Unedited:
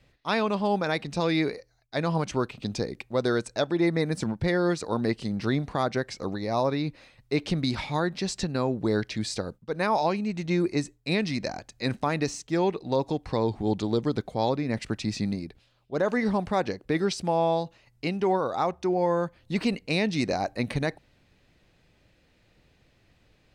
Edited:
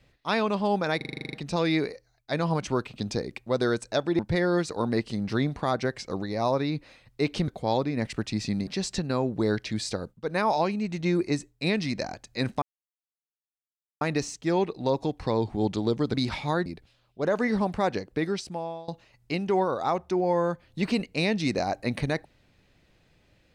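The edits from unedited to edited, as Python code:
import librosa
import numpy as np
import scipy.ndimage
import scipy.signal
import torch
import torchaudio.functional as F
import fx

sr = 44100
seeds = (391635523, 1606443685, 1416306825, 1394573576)

y = fx.edit(x, sr, fx.stutter(start_s=0.97, slice_s=0.04, count=10),
    fx.cut(start_s=3.83, length_s=0.48),
    fx.swap(start_s=7.6, length_s=0.52, other_s=14.2, other_length_s=1.19),
    fx.insert_silence(at_s=12.07, length_s=1.39),
    fx.fade_out_to(start_s=16.78, length_s=0.83, floor_db=-23.0), tone=tone)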